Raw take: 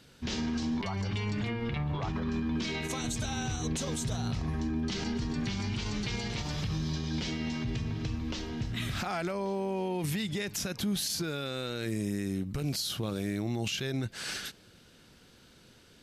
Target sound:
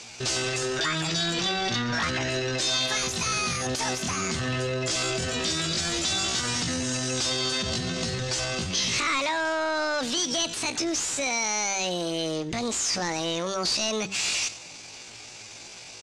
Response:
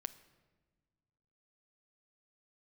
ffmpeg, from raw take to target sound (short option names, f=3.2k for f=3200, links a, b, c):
-filter_complex "[0:a]bandreject=f=60:t=h:w=6,bandreject=f=120:t=h:w=6,bandreject=f=180:t=h:w=6,bandreject=f=240:t=h:w=6,asplit=2[a][b];[b]alimiter=level_in=6.5dB:limit=-24dB:level=0:latency=1:release=61,volume=-6.5dB,volume=-3dB[c];[a][c]amix=inputs=2:normalize=0,equalizer=f=67:w=4.8:g=10.5,asplit=2[d][e];[e]aecho=0:1:90:0.0891[f];[d][f]amix=inputs=2:normalize=0,asetrate=72056,aresample=44100,atempo=0.612027,tiltshelf=f=840:g=-9,asoftclip=type=tanh:threshold=-29dB,lowpass=f=7.1k:w=0.5412,lowpass=f=7.1k:w=1.3066,volume=7.5dB"